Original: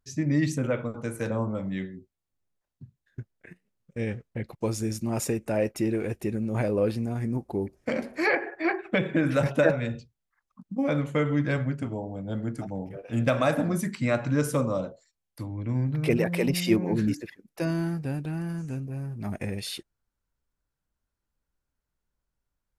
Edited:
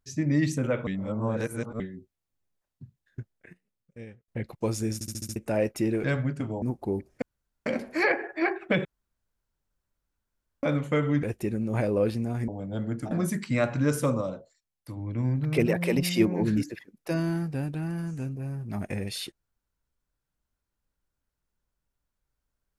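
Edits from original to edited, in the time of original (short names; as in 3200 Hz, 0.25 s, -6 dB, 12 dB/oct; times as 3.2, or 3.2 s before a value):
0.87–1.8 reverse
3.2–4.28 fade out
4.94 stutter in place 0.07 s, 6 plays
6.04–7.29 swap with 11.46–12.04
7.89 insert room tone 0.44 s
9.08–10.86 room tone
12.67–13.62 cut
14.72–15.48 gain -3.5 dB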